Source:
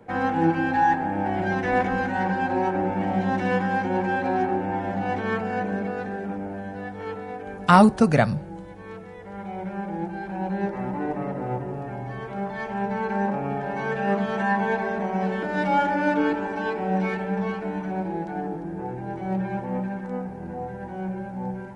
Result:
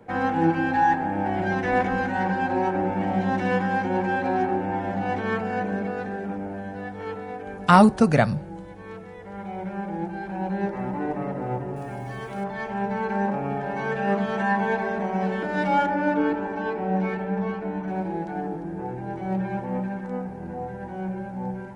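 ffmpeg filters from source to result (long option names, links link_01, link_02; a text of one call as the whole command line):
ffmpeg -i in.wav -filter_complex "[0:a]asettb=1/sr,asplit=3[link_01][link_02][link_03];[link_01]atrim=end=11.764[link_04];[link_02]atrim=start=11.76:end=12.44,asetpts=PTS-STARTPTS,afade=type=in:duration=0.004:curve=qsin,afade=type=out:start_time=0.676:duration=0.004:curve=qsin,aemphasis=mode=production:type=75fm[link_05];[link_03]atrim=start=12.436[link_06];[link_04][link_05]acrossfade=duration=0.004:curve1=hsin:curve2=qsin[link_07];[link_07][link_06]acrossfade=duration=0.004:curve1=qsin:curve2=hsin,asettb=1/sr,asplit=3[link_08][link_09][link_10];[link_08]atrim=end=15.864[link_11];[link_09]atrim=start=15.86:end=17.88,asetpts=PTS-STARTPTS,afade=type=in:duration=0.004:curve=qsin,afade=type=out:start_time=2.016:duration=0.004:curve=qsin,highshelf=frequency=2400:gain=-8.5[link_12];[link_10]atrim=start=17.876[link_13];[link_11][link_12]acrossfade=duration=0.004:curve1=hsin:curve2=qsin[link_14];[link_14][link_13]acrossfade=duration=0.004:curve1=qsin:curve2=hsin" out.wav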